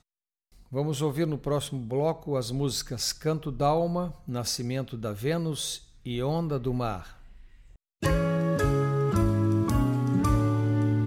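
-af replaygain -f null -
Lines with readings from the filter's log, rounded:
track_gain = +10.3 dB
track_peak = 0.179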